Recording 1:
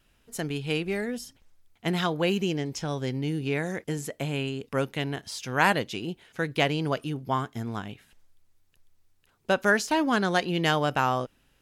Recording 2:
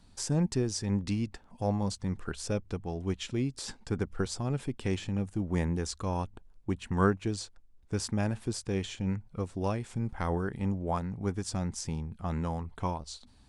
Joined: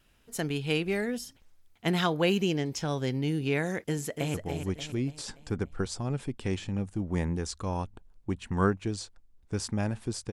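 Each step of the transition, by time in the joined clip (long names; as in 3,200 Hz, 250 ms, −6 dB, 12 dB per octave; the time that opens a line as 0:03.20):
recording 1
0:03.81–0:04.34: delay throw 290 ms, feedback 45%, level −6.5 dB
0:04.34: continue with recording 2 from 0:02.74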